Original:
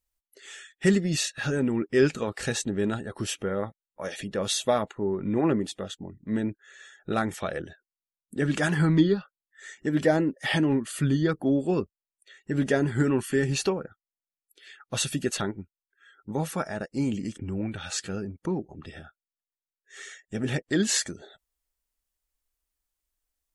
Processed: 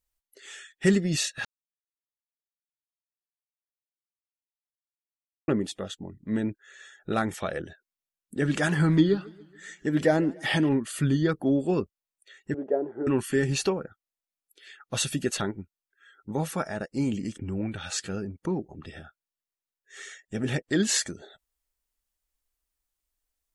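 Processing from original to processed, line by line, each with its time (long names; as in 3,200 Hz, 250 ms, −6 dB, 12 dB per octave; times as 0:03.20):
0:01.45–0:05.48: silence
0:08.41–0:10.69: feedback echo with a swinging delay time 141 ms, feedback 52%, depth 129 cents, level −23 dB
0:12.54–0:13.07: flat-topped band-pass 530 Hz, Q 1.2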